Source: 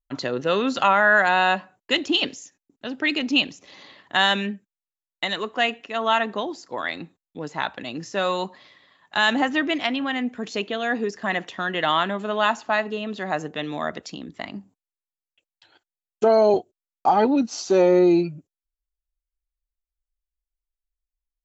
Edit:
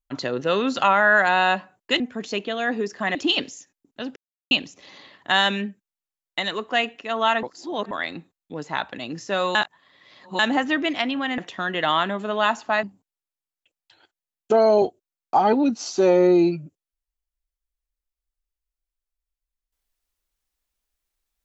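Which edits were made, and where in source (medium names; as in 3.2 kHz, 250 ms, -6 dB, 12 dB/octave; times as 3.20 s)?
3.01–3.36 s: mute
6.28–6.76 s: reverse
8.40–9.24 s: reverse
10.23–11.38 s: move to 2.00 s
12.83–14.55 s: delete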